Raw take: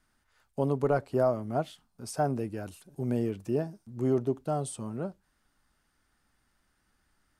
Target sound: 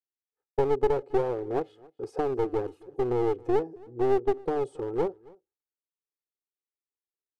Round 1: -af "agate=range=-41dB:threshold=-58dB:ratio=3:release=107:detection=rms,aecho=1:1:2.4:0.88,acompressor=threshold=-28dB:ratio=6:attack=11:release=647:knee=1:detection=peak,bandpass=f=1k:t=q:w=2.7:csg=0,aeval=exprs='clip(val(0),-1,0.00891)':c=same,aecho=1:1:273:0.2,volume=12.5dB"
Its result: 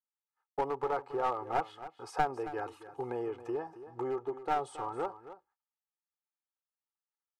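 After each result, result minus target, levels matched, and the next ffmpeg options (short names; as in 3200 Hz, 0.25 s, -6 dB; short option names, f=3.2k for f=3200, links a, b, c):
1000 Hz band +7.5 dB; echo-to-direct +10.5 dB
-af "agate=range=-41dB:threshold=-58dB:ratio=3:release=107:detection=rms,aecho=1:1:2.4:0.88,acompressor=threshold=-28dB:ratio=6:attack=11:release=647:knee=1:detection=peak,bandpass=f=430:t=q:w=2.7:csg=0,aeval=exprs='clip(val(0),-1,0.00891)':c=same,aecho=1:1:273:0.2,volume=12.5dB"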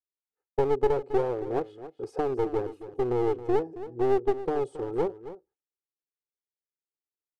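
echo-to-direct +10.5 dB
-af "agate=range=-41dB:threshold=-58dB:ratio=3:release=107:detection=rms,aecho=1:1:2.4:0.88,acompressor=threshold=-28dB:ratio=6:attack=11:release=647:knee=1:detection=peak,bandpass=f=430:t=q:w=2.7:csg=0,aeval=exprs='clip(val(0),-1,0.00891)':c=same,aecho=1:1:273:0.0596,volume=12.5dB"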